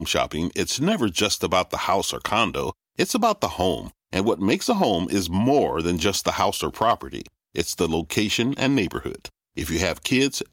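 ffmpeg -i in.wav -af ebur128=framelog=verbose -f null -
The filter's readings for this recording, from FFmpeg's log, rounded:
Integrated loudness:
  I:         -23.0 LUFS
  Threshold: -33.2 LUFS
Loudness range:
  LRA:         2.1 LU
  Threshold: -43.1 LUFS
  LRA low:   -24.4 LUFS
  LRA high:  -22.3 LUFS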